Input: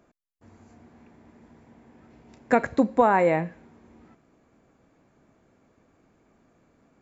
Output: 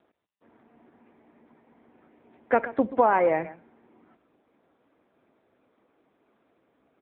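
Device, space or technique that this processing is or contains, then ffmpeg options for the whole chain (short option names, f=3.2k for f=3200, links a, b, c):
telephone: -af "highpass=290,lowpass=3.1k,lowpass=5.8k,aecho=1:1:131:0.158" -ar 8000 -c:a libopencore_amrnb -b:a 6700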